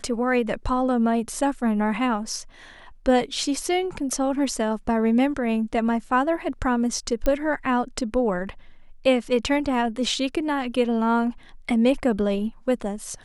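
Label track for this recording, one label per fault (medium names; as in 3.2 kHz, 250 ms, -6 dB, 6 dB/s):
7.260000	7.260000	pop -11 dBFS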